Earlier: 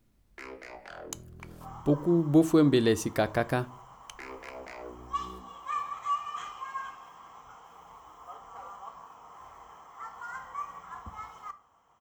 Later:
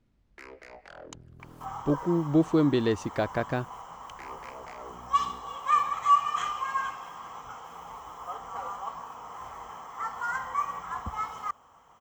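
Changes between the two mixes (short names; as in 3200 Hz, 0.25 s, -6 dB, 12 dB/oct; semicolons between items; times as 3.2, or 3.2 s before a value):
speech: add air absorption 110 m; second sound +10.5 dB; reverb: off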